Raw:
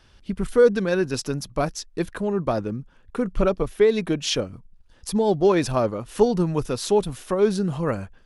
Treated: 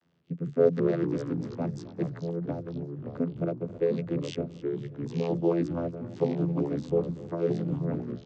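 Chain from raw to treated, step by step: rotary cabinet horn 0.9 Hz; vocoder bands 16, saw 84.7 Hz; on a send: feedback delay 268 ms, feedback 52%, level -18 dB; on the sum: ever faster or slower copies 101 ms, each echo -3 st, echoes 3, each echo -6 dB; trim -5 dB

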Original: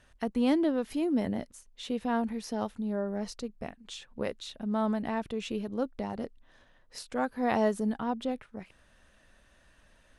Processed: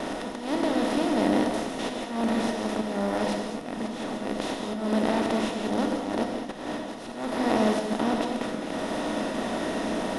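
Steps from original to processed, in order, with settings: spectral levelling over time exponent 0.2; gate with hold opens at -18 dBFS; band-stop 1.6 kHz, Q 16; on a send: reverse echo 70 ms -12 dB; on the sum: slow attack 198 ms; gated-style reverb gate 250 ms flat, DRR 1 dB; trim -5 dB

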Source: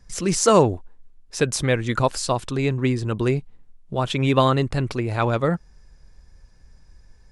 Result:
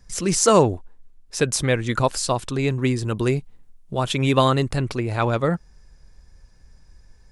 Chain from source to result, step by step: treble shelf 7.1 kHz +5 dB, from 2.68 s +11.5 dB, from 4.76 s +3.5 dB

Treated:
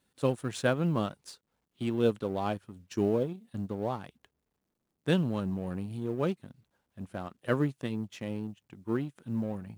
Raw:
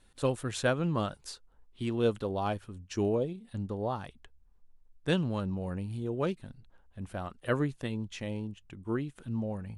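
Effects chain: companding laws mixed up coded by A; high-pass 160 Hz 12 dB/octave; bass shelf 220 Hz +9.5 dB

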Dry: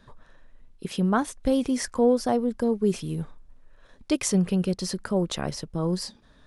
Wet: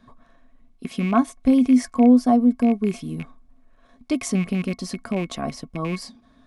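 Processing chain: rattle on loud lows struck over -27 dBFS, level -24 dBFS; small resonant body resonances 250/690/1100/2200 Hz, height 16 dB, ringing for 90 ms; trim -3.5 dB

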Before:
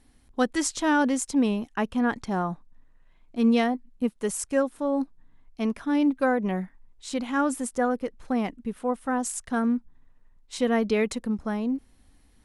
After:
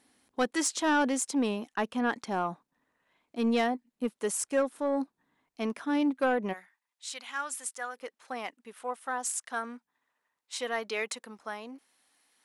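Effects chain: Bessel high-pass 340 Hz, order 2, from 6.52 s 1.8 kHz, from 7.96 s 930 Hz; saturation -18 dBFS, distortion -18 dB

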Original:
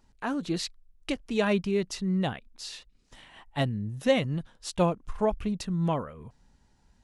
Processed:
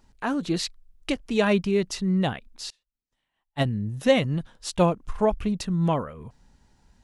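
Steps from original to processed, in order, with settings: 2.70–3.65 s: upward expansion 2.5:1, over -44 dBFS; trim +4 dB

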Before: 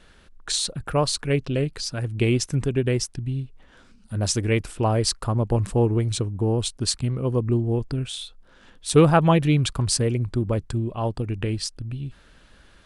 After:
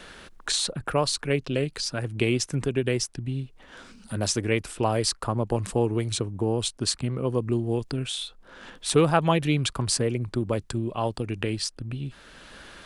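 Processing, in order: bass shelf 170 Hz -9 dB; three bands compressed up and down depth 40%

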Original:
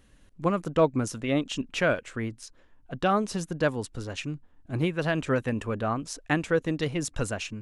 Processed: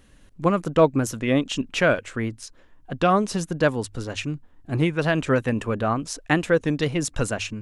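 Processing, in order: hum notches 50/100 Hz; warped record 33 1/3 rpm, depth 100 cents; trim +5 dB

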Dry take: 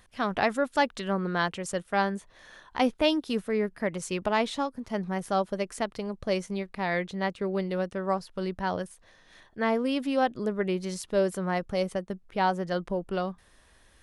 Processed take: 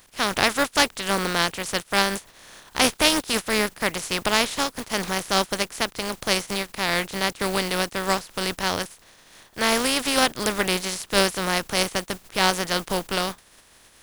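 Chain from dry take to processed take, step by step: spectral contrast reduction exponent 0.38; trim +5 dB

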